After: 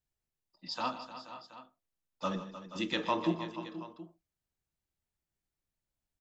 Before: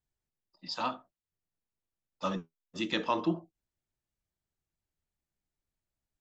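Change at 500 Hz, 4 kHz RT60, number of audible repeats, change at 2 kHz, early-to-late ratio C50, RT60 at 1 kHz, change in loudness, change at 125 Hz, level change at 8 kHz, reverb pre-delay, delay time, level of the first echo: -0.5 dB, no reverb, 5, -1.0 dB, no reverb, no reverb, -2.5 dB, -0.5 dB, no reading, no reverb, 119 ms, -16.5 dB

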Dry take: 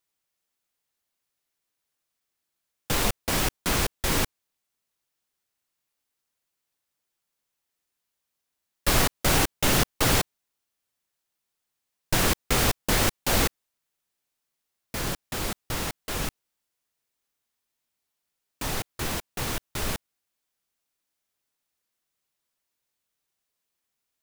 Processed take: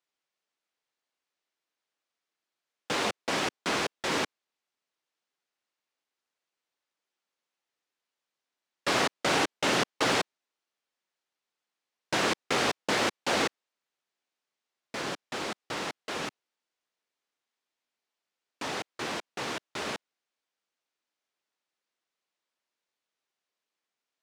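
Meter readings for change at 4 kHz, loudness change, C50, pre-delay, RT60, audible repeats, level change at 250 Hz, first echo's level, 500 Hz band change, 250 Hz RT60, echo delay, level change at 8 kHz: -2.5 dB, -4.0 dB, no reverb, no reverb, no reverb, no echo, -4.0 dB, no echo, -0.5 dB, no reverb, no echo, -9.0 dB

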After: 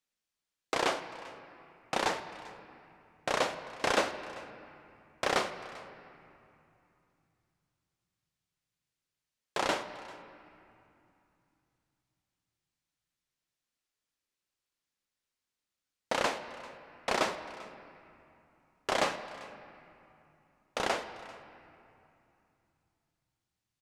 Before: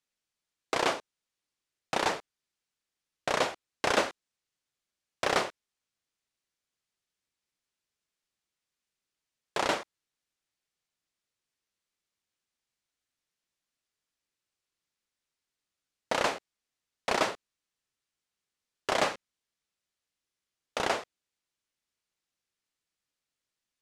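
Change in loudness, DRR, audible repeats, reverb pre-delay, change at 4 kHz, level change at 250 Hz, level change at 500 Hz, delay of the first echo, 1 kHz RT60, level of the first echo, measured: -2.5 dB, 9.5 dB, 1, 4 ms, -1.5 dB, -1.5 dB, -1.5 dB, 393 ms, 2.9 s, -20.5 dB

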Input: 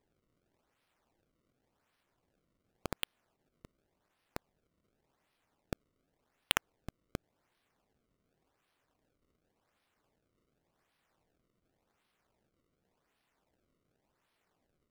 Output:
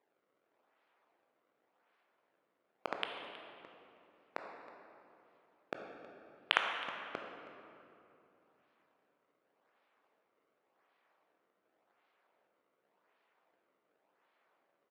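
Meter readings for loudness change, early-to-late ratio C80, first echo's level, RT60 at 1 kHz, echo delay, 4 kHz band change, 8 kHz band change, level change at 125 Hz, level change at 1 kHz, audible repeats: 0.0 dB, 4.5 dB, -18.0 dB, 2.7 s, 319 ms, -0.5 dB, -16.5 dB, -16.0 dB, +5.5 dB, 1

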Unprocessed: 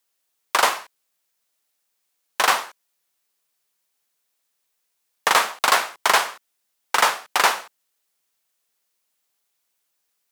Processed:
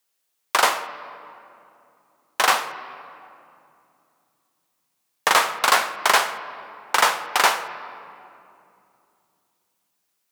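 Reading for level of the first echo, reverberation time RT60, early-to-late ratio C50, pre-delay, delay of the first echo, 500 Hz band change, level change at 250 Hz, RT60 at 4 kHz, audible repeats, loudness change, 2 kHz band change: no echo, 2.7 s, 12.0 dB, 13 ms, no echo, +0.5 dB, +0.5 dB, 1.6 s, no echo, 0.0 dB, +0.5 dB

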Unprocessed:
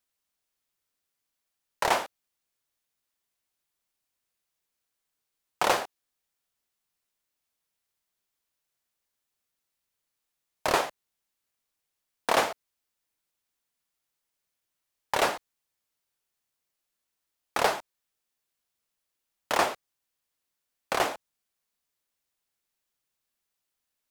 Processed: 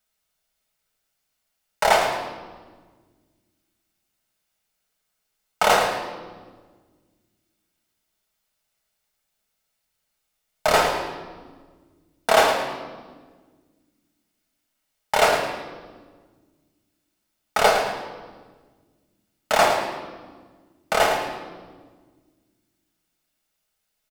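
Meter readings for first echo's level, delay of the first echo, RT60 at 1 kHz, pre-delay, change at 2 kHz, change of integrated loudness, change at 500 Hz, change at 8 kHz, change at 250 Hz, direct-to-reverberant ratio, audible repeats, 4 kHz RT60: -9.0 dB, 109 ms, 1.4 s, 5 ms, +8.0 dB, +6.5 dB, +9.5 dB, +6.5 dB, +5.5 dB, -0.5 dB, 1, 1.2 s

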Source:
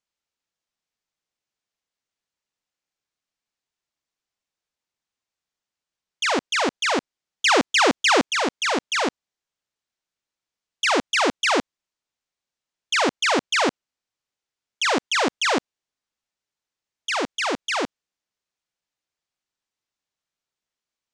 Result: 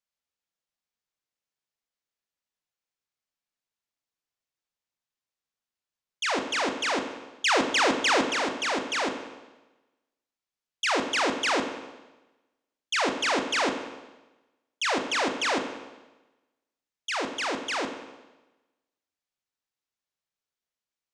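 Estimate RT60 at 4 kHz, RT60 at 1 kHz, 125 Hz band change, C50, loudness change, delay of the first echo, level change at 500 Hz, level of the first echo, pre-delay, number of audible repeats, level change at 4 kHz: 1.0 s, 1.1 s, -5.0 dB, 8.5 dB, -5.0 dB, no echo, -4.5 dB, no echo, 21 ms, no echo, -5.0 dB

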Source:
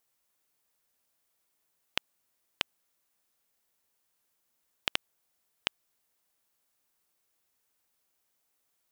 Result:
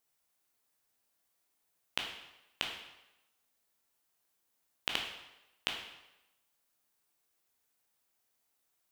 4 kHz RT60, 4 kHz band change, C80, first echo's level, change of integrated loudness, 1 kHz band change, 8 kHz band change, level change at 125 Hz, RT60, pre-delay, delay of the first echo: 0.85 s, -1.5 dB, 7.5 dB, no echo, -2.5 dB, -1.0 dB, -2.0 dB, -2.0 dB, 0.95 s, 12 ms, no echo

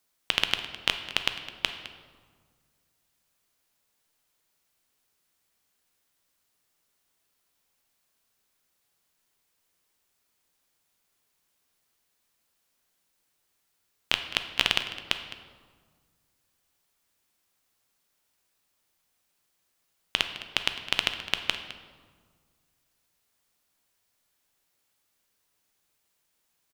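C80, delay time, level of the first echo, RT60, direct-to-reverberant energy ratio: 10.0 dB, 210 ms, -16.0 dB, 1.6 s, 7.0 dB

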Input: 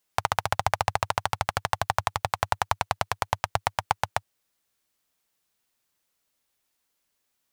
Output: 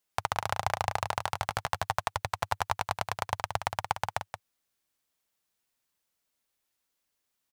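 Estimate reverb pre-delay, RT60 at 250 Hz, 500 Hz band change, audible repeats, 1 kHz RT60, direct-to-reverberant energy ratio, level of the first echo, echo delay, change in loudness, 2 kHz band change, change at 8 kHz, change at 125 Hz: no reverb, no reverb, -4.5 dB, 1, no reverb, no reverb, -8.0 dB, 176 ms, -4.5 dB, -4.5 dB, -4.5 dB, -4.5 dB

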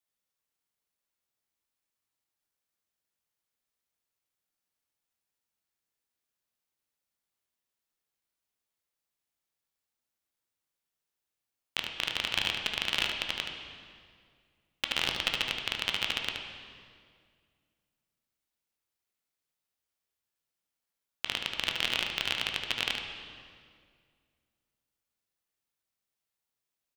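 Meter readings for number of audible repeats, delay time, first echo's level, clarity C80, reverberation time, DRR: 1, 74 ms, -6.5 dB, 5.5 dB, 2.1 s, 1.0 dB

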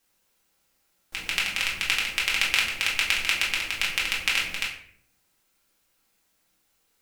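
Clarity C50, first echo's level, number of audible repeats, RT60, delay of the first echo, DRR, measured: 6.0 dB, no echo, no echo, 0.60 s, no echo, -5.5 dB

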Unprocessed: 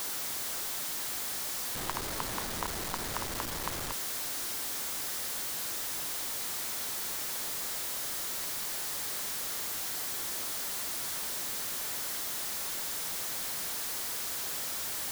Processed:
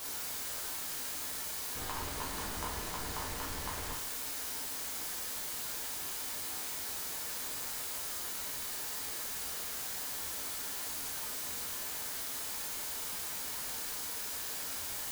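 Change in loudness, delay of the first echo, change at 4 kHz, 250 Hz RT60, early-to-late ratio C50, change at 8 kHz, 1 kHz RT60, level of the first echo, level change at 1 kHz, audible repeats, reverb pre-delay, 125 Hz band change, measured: -3.5 dB, no echo, -4.0 dB, 0.60 s, 5.0 dB, -3.5 dB, 0.50 s, no echo, -3.0 dB, no echo, 4 ms, -1.5 dB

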